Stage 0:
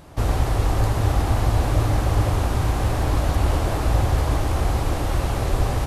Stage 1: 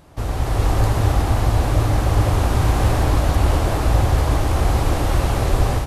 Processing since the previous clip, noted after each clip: AGC; gain -3.5 dB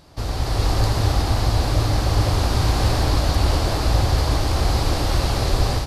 bell 4600 Hz +12 dB 0.7 oct; gain -2 dB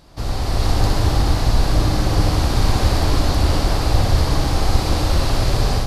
octaver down 2 oct, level -1 dB; on a send: flutter echo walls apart 10.6 m, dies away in 0.59 s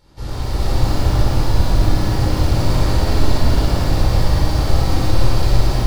shoebox room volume 1400 m³, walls mixed, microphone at 4.4 m; lo-fi delay 0.112 s, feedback 80%, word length 4-bit, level -10 dB; gain -10 dB

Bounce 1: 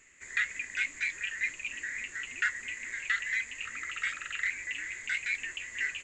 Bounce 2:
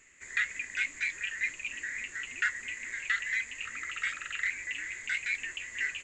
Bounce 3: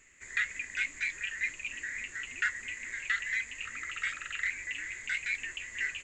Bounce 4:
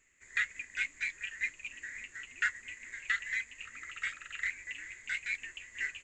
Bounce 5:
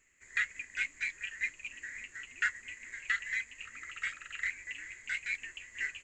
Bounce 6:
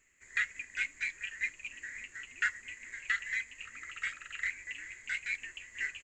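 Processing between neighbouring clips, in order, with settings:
nothing audible
low shelf 100 Hz +6 dB; gain -1 dB
upward expander 1.5:1, over -45 dBFS
notch 3600 Hz, Q 18
speakerphone echo 80 ms, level -28 dB

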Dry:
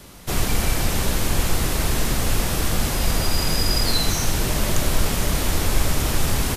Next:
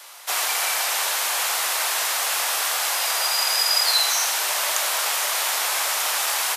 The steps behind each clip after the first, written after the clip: HPF 730 Hz 24 dB/oct; gain +4.5 dB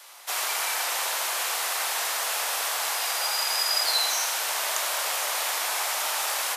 tape echo 74 ms, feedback 81%, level -3.5 dB, low-pass 1400 Hz; gain -5 dB

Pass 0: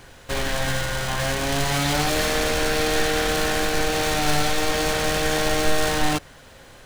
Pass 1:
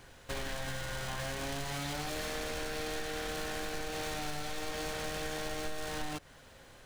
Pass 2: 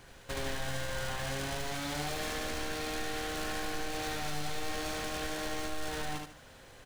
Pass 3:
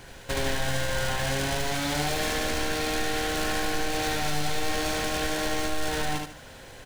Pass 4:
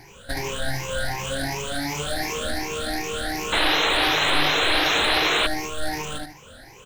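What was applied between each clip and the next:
compressor, threshold -25 dBFS, peak gain reduction 11 dB; gain -9 dB
feedback echo 74 ms, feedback 30%, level -4 dB
notch 1200 Hz, Q 10; gain +8.5 dB
moving spectral ripple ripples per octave 0.76, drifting +2.7 Hz, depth 18 dB; painted sound noise, 3.52–5.47, 270–4200 Hz -18 dBFS; gain -3.5 dB

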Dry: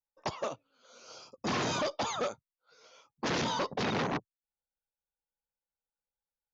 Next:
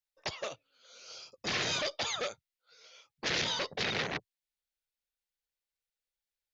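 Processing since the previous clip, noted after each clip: ten-band EQ 125 Hz -3 dB, 250 Hz -10 dB, 1000 Hz -9 dB, 2000 Hz +5 dB, 4000 Hz +5 dB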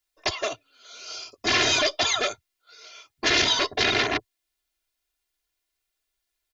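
comb 2.9 ms, depth 89%; gain +8.5 dB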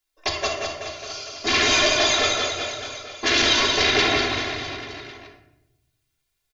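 reverse bouncing-ball echo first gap 0.18 s, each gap 1.1×, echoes 5; on a send at -2 dB: reverb RT60 0.90 s, pre-delay 3 ms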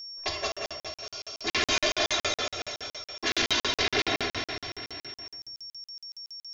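whine 5500 Hz -32 dBFS; crackling interface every 0.14 s, samples 2048, zero, from 0.52; gain -6.5 dB

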